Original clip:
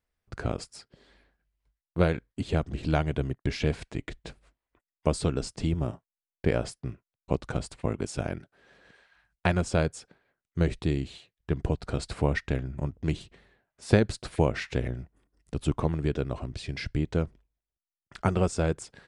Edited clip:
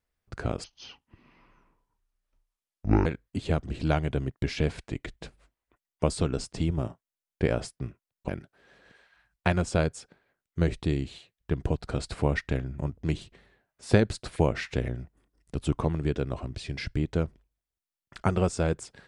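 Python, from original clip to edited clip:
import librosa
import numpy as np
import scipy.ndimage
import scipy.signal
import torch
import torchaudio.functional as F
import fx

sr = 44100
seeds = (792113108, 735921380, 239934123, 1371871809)

y = fx.edit(x, sr, fx.speed_span(start_s=0.64, length_s=1.45, speed=0.6),
    fx.cut(start_s=7.32, length_s=0.96), tone=tone)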